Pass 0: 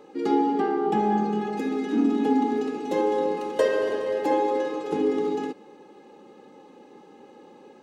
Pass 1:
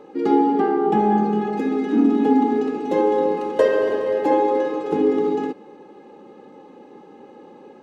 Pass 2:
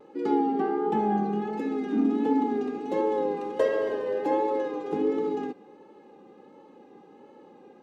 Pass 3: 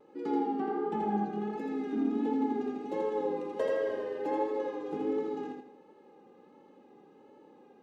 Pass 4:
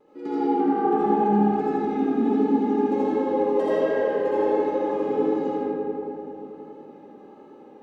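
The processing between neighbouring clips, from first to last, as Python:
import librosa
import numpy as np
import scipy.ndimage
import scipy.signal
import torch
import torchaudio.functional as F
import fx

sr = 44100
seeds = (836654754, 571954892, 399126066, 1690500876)

y1 = fx.high_shelf(x, sr, hz=3100.0, db=-10.5)
y1 = F.gain(torch.from_numpy(y1), 5.5).numpy()
y2 = fx.vibrato(y1, sr, rate_hz=1.4, depth_cents=52.0)
y2 = F.gain(torch.from_numpy(y2), -7.5).numpy()
y3 = fx.echo_feedback(y2, sr, ms=82, feedback_pct=34, wet_db=-3.5)
y3 = F.gain(torch.from_numpy(y3), -7.5).numpy()
y4 = fx.rev_freeverb(y3, sr, rt60_s=3.7, hf_ratio=0.3, predelay_ms=35, drr_db=-8.5)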